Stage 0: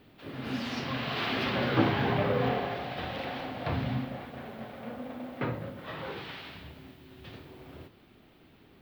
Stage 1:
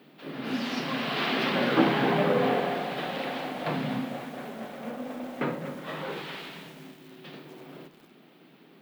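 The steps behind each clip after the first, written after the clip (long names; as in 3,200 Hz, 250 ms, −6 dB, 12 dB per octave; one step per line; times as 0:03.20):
elliptic high-pass filter 150 Hz
feedback echo at a low word length 241 ms, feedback 55%, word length 8 bits, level −11.5 dB
level +4 dB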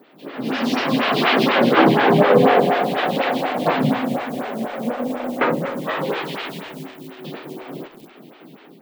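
automatic gain control gain up to 7 dB
phaser with staggered stages 4.1 Hz
level +7.5 dB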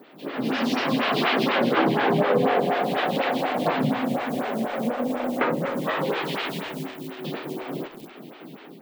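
downward compressor 2 to 1, threshold −26 dBFS, peak gain reduction 10 dB
level +1.5 dB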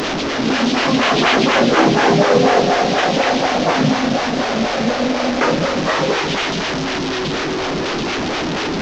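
linear delta modulator 32 kbit/s, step −22.5 dBFS
level that may rise only so fast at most 110 dB per second
level +8 dB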